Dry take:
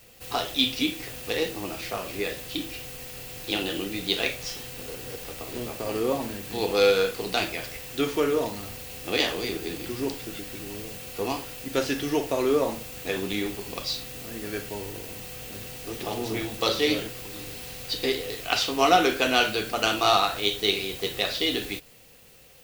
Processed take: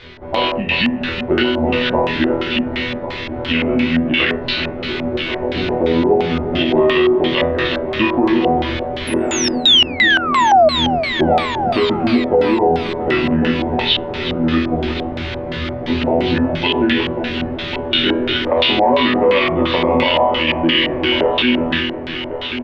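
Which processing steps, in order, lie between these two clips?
reverse; upward compressor, threshold -37 dBFS; reverse; pitch shift -4.5 st; distance through air 210 m; chord resonator E2 fifth, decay 0.45 s; painted sound fall, 9.07–10.69 s, 600–11000 Hz -36 dBFS; compression, threshold -41 dBFS, peak gain reduction 12 dB; multi-head delay 365 ms, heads first and third, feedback 48%, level -12.5 dB; LFO low-pass square 2.9 Hz 730–3600 Hz; loudness maximiser +32.5 dB; trim -3.5 dB

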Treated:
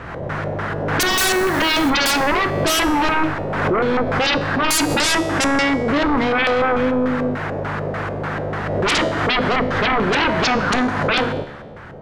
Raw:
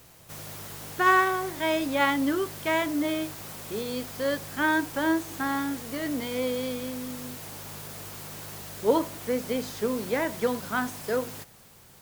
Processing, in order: LFO low-pass square 3.4 Hz 580–1600 Hz; sine folder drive 20 dB, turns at -8.5 dBFS; 1.10–1.90 s: short-mantissa float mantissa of 2-bit; feedback comb 72 Hz, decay 1.1 s, harmonics all, mix 60%; swell ahead of each attack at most 33 dB/s; trim +1 dB

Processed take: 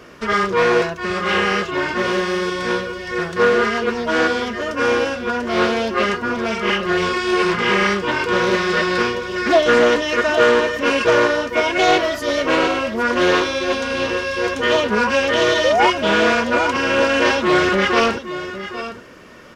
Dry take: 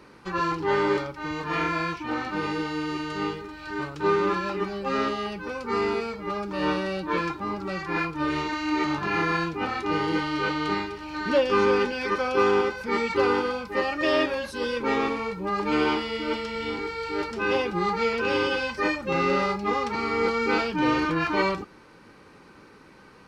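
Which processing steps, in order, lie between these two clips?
in parallel at -11.5 dB: hard clipper -23 dBFS, distortion -11 dB; on the sum: painted sound rise, 18.61–18.93 s, 410–880 Hz -22 dBFS; tape speed +19%; delay 812 ms -12 dB; loudspeaker Doppler distortion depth 0.21 ms; trim +6.5 dB

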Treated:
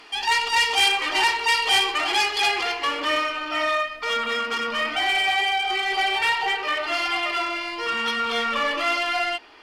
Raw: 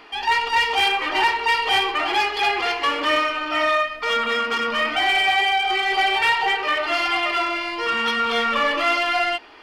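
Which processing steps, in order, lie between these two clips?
peaking EQ 8.3 kHz +14 dB 2.1 oct, from 2.63 s +5 dB; trim -4 dB

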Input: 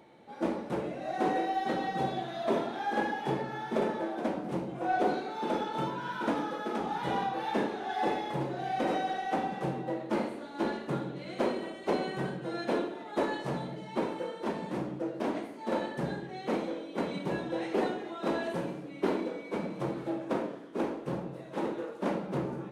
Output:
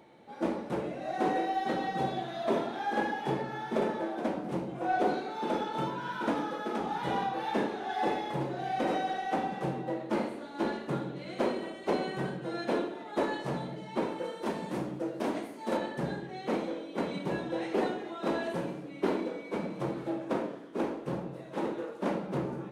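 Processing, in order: 14.24–15.77 s: treble shelf 6.4 kHz +9 dB

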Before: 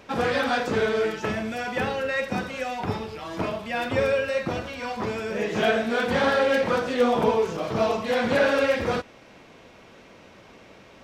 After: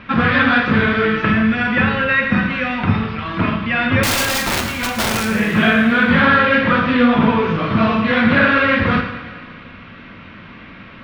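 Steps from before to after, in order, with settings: Bessel low-pass 2.3 kHz, order 6; high-order bell 550 Hz -13 dB; hum notches 60/120/180 Hz; in parallel at +1 dB: compression, threshold -28 dBFS, peak gain reduction 6 dB; 4.03–5.25 s: on the sum: integer overflow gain 22.5 dB; thinning echo 113 ms, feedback 69%, high-pass 470 Hz, level -14.5 dB; on a send at -5 dB: reverberation, pre-delay 3 ms; on the sum: trim +8.5 dB

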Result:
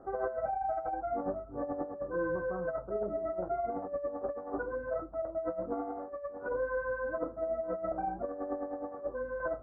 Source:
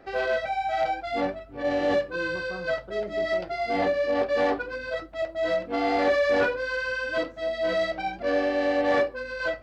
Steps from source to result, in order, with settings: elliptic low-pass 1.3 kHz, stop band 60 dB; compressor with a negative ratio -29 dBFS, ratio -0.5; trim -4.5 dB

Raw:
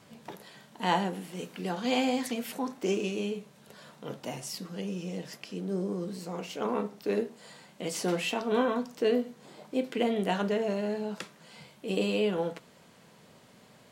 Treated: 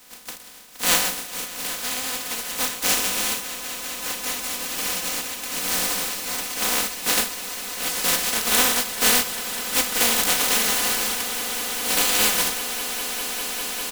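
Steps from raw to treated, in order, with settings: spectral contrast reduction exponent 0.11; hum notches 50/100/150/200 Hz; comb 4 ms, depth 73%; 1.47–2.50 s: compression 4:1, threshold -33 dBFS, peak gain reduction 10 dB; echo with a slow build-up 200 ms, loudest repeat 8, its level -16 dB; trim +6 dB

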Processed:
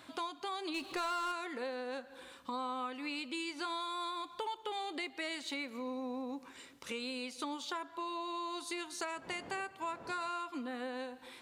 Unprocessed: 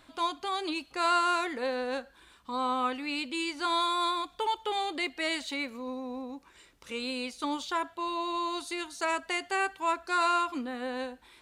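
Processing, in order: 9.15–10.28 s: wind noise 640 Hz -44 dBFS; on a send at -22.5 dB: reverberation RT60 1.1 s, pre-delay 138 ms; on the sum: compression 5:1, threshold -41 dBFS, peak gain reduction 17 dB; high-pass 110 Hz 12 dB/octave; 0.74–1.32 s: power-law waveshaper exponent 0.7; trim +3 dB

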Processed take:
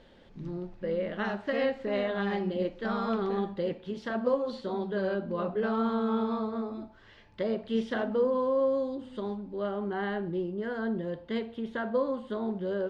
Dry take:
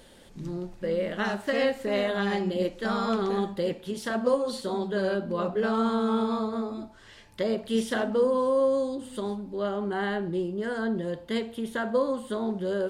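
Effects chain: distance through air 200 m; trim -2.5 dB

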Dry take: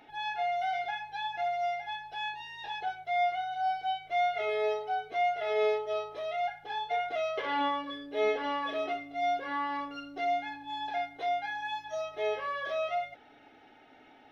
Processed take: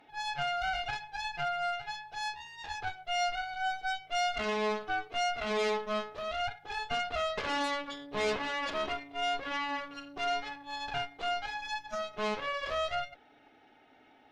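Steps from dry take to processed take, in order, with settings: Chebyshev shaper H 6 -9 dB, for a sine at -19 dBFS; trim -4 dB

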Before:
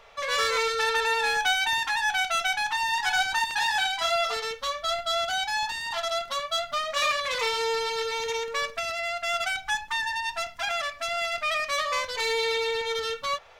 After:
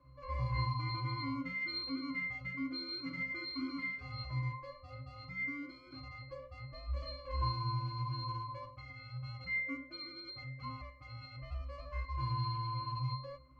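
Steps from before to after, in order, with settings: peaking EQ 330 Hz +11.5 dB 2 oct; ring modulator 570 Hz; pitch-class resonator C, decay 0.62 s; trim +8 dB

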